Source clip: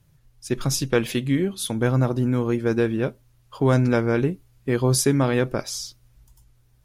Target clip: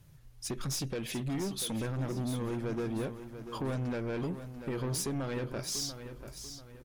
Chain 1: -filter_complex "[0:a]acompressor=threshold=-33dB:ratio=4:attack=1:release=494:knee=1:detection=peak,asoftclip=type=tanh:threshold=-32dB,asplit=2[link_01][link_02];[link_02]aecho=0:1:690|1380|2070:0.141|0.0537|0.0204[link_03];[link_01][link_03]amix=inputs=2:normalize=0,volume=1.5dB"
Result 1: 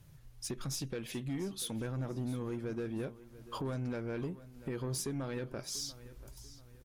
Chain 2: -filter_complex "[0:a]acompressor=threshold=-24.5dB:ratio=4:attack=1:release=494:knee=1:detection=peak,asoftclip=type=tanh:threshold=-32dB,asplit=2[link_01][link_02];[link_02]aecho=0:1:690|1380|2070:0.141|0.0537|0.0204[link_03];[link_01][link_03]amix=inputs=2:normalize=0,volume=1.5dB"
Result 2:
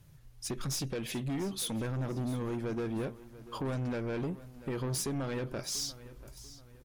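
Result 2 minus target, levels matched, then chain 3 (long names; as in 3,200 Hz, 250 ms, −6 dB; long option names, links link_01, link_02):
echo-to-direct −6.5 dB
-filter_complex "[0:a]acompressor=threshold=-24.5dB:ratio=4:attack=1:release=494:knee=1:detection=peak,asoftclip=type=tanh:threshold=-32dB,asplit=2[link_01][link_02];[link_02]aecho=0:1:690|1380|2070|2760:0.299|0.113|0.0431|0.0164[link_03];[link_01][link_03]amix=inputs=2:normalize=0,volume=1.5dB"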